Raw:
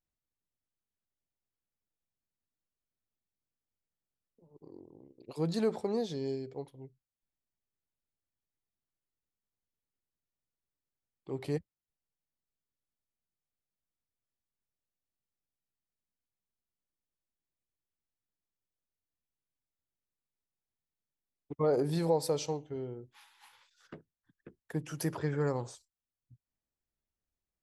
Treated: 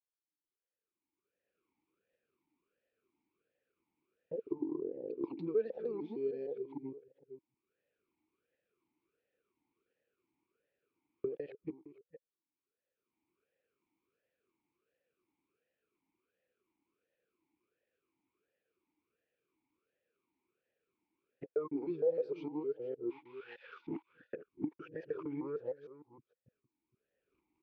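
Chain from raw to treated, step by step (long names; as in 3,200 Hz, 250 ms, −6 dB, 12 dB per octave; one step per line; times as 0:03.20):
reversed piece by piece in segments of 154 ms
camcorder AGC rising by 19 dB per second
noise gate −58 dBFS, range −9 dB
downward compressor 6 to 1, threshold −31 dBFS, peak gain reduction 13.5 dB
high-frequency loss of the air 310 metres
slap from a distant wall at 79 metres, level −14 dB
formant filter swept between two vowels e-u 1.4 Hz
level +7 dB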